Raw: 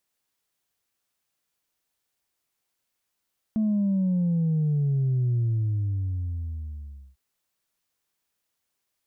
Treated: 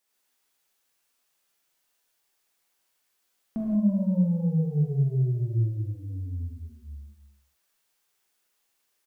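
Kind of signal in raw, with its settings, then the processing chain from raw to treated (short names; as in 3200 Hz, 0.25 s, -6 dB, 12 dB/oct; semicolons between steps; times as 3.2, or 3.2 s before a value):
sub drop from 220 Hz, over 3.60 s, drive 0.5 dB, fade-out 1.79 s, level -21 dB
bell 85 Hz -9.5 dB 2.5 oct; on a send: echo 0.234 s -11 dB; on the sum: non-linear reverb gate 0.21 s flat, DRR -4.5 dB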